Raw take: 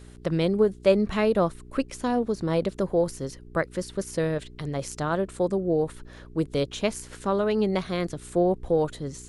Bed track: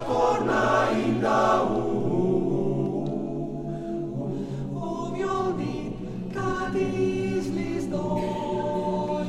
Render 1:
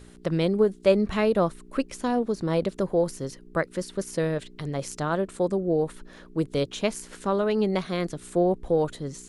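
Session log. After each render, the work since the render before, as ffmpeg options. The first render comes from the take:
-af "bandreject=f=60:t=h:w=4,bandreject=f=120:t=h:w=4"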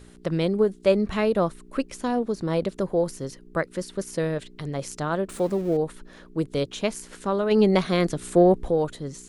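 -filter_complex "[0:a]asettb=1/sr,asplit=3[a][b][c];[a]atrim=end=5.294[d];[b]atrim=start=5.29:end=5.77,asetpts=PTS-STARTPTS,afade=t=in:d=0.004:c=qsin,afade=t=out:st=0.476:d=0.004:c=qsin,aeval=exprs='val(0)+0.5*0.0112*sgn(val(0))':c=same[e];[c]atrim=start=5.766[f];[d][e]acrossfade=d=0.004:c1=hsin:c2=qsin[g];[g][f]acrossfade=d=0.004:c1=qsin:c2=hsin,asplit=3[h][i][j];[h]afade=t=out:st=7.5:d=0.02[k];[i]acontrast=53,afade=t=in:st=7.5:d=0.02,afade=t=out:st=8.69:d=0.02[l];[j]afade=t=in:st=8.69:d=0.02[m];[k][l][m]amix=inputs=3:normalize=0"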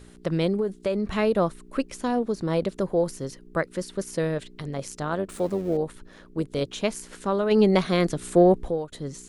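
-filter_complex "[0:a]asettb=1/sr,asplit=3[a][b][c];[a]atrim=end=0.544[d];[b]atrim=start=0.54:end=1.11,asetpts=PTS-STARTPTS,afade=t=in:d=0.004:c=qsin,afade=t=out:st=0.566:d=0.004:c=qsin,acompressor=threshold=-21dB:ratio=6:attack=3.2:release=140:knee=1:detection=peak[e];[c]atrim=start=1.106[f];[d][e]acrossfade=d=0.004:c1=hsin:c2=qsin[g];[g][f]acrossfade=d=0.004:c1=qsin:c2=hsin,asettb=1/sr,asplit=3[h][i][j];[h]atrim=end=4.624[k];[i]atrim=start=4.62:end=6.62,asetpts=PTS-STARTPTS,afade=t=in:d=0.004:c=qsin,afade=t=out:st=1.996:d=0.004:c=qsin,tremolo=f=97:d=0.4[l];[j]atrim=start=6.616[m];[k][l]acrossfade=d=0.004:c1=hsin:c2=qsin[n];[n][m]acrossfade=d=0.004:c1=qsin:c2=hsin,asplit=2[o][p];[o]atrim=end=8.92,asetpts=PTS-STARTPTS,afade=t=out:st=8.47:d=0.45:c=qsin:silence=0.0794328[q];[p]atrim=start=8.92,asetpts=PTS-STARTPTS,afade=t=in:d=0.004:c=hsin:silence=0.0794328[r];[q][r]concat=n=2:v=0:a=1"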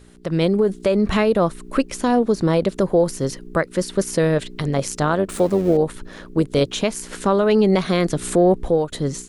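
-af "alimiter=limit=-18.5dB:level=0:latency=1:release=324,dynaudnorm=f=230:g=3:m=11dB"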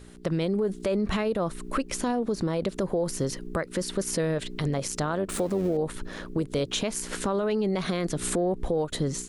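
-af "alimiter=limit=-14dB:level=0:latency=1:release=64,acompressor=threshold=-26dB:ratio=2"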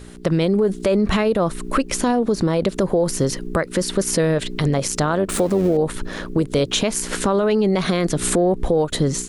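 -af "volume=8.5dB"

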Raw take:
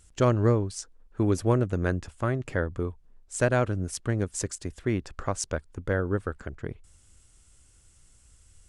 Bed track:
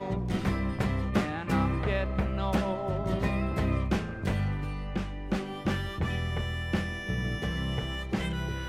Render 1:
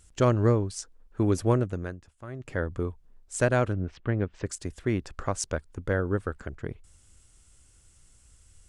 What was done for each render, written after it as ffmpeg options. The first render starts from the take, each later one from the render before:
-filter_complex "[0:a]asplit=3[a][b][c];[a]afade=t=out:st=3.72:d=0.02[d];[b]lowpass=f=3.2k:w=0.5412,lowpass=f=3.2k:w=1.3066,afade=t=in:st=3.72:d=0.02,afade=t=out:st=4.45:d=0.02[e];[c]afade=t=in:st=4.45:d=0.02[f];[d][e][f]amix=inputs=3:normalize=0,asplit=3[g][h][i];[g]atrim=end=1.97,asetpts=PTS-STARTPTS,afade=t=out:st=1.54:d=0.43:silence=0.177828[j];[h]atrim=start=1.97:end=2.27,asetpts=PTS-STARTPTS,volume=-15dB[k];[i]atrim=start=2.27,asetpts=PTS-STARTPTS,afade=t=in:d=0.43:silence=0.177828[l];[j][k][l]concat=n=3:v=0:a=1"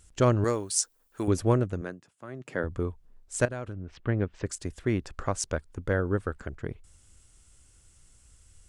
-filter_complex "[0:a]asettb=1/sr,asplit=3[a][b][c];[a]atrim=end=0.444[d];[b]atrim=start=0.44:end=1.28,asetpts=PTS-STARTPTS,afade=t=in:d=0.004:c=qsin,afade=t=out:st=0.836:d=0.004:c=qsin,aemphasis=mode=production:type=riaa[e];[c]atrim=start=1.276[f];[d][e]acrossfade=d=0.004:c1=hsin:c2=qsin[g];[g][f]acrossfade=d=0.004:c1=qsin:c2=hsin,asettb=1/sr,asplit=3[h][i][j];[h]atrim=end=1.814[k];[i]atrim=start=1.81:end=2.64,asetpts=PTS-STARTPTS,afade=t=in:d=0.004:c=qsin,afade=t=out:st=0.826:d=0.004:c=qsin,highpass=f=140:w=0.5412,highpass=f=140:w=1.3066[l];[j]atrim=start=2.636[m];[k][l]acrossfade=d=0.004:c1=hsin:c2=qsin[n];[n][m]acrossfade=d=0.004:c1=qsin:c2=hsin,asettb=1/sr,asplit=3[o][p][q];[o]atrim=end=3.454[r];[p]atrim=start=3.45:end=3.99,asetpts=PTS-STARTPTS,afade=t=in:d=0.004:c=qsin,afade=t=out:st=0.536:d=0.004:c=qsin,acompressor=threshold=-37dB:ratio=2.5:attack=3.2:release=140:knee=1:detection=peak[s];[q]atrim=start=3.986[t];[r][s]acrossfade=d=0.004:c1=hsin:c2=qsin[u];[u][t]acrossfade=d=0.004:c1=qsin:c2=hsin"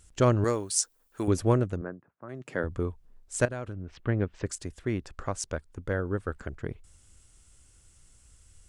-filter_complex "[0:a]asplit=3[a][b][c];[a]afade=t=out:st=1.75:d=0.02[d];[b]lowpass=f=1.6k:w=0.5412,lowpass=f=1.6k:w=1.3066,afade=t=in:st=1.75:d=0.02,afade=t=out:st=2.28:d=0.02[e];[c]afade=t=in:st=2.28:d=0.02[f];[d][e][f]amix=inputs=3:normalize=0,asplit=3[g][h][i];[g]atrim=end=4.652[j];[h]atrim=start=4.648:end=6.282,asetpts=PTS-STARTPTS,volume=-3dB[k];[i]atrim=start=6.278[l];[j][k]acrossfade=d=0.004:c1=hsin:c2=hsin[m];[m][l]acrossfade=d=0.004:c1=hsin:c2=hsin"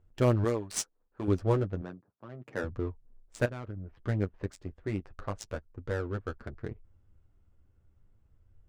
-af "adynamicsmooth=sensitivity=7.5:basefreq=1k,flanger=delay=8.3:depth=2.2:regen=-21:speed=0.33:shape=sinusoidal"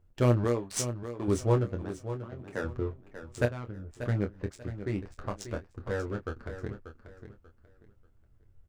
-filter_complex "[0:a]asplit=2[a][b];[b]adelay=25,volume=-8dB[c];[a][c]amix=inputs=2:normalize=0,aecho=1:1:588|1176|1764:0.282|0.0733|0.0191"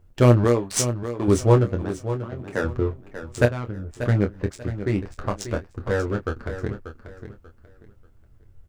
-af "volume=9dB"

